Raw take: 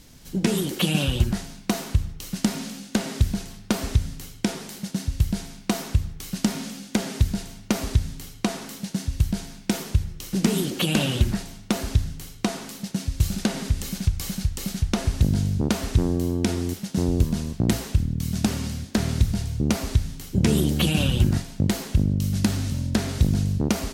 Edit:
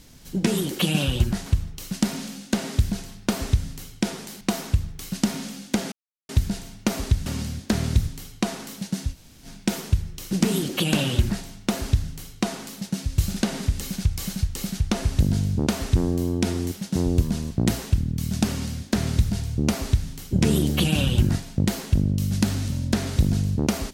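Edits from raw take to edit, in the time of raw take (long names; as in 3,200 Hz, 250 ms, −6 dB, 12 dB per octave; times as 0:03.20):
0:01.46–0:01.88: remove
0:04.83–0:05.62: remove
0:07.13: splice in silence 0.37 s
0:09.15–0:09.47: fill with room tone, crossfade 0.06 s
0:18.51–0:19.33: duplicate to 0:08.10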